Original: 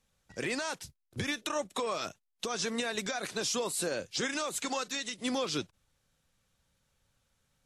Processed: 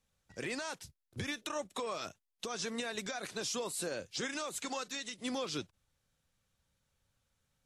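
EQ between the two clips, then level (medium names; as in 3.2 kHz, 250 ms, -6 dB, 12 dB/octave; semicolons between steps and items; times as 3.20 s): peaking EQ 86 Hz +3 dB 0.83 oct; -5.0 dB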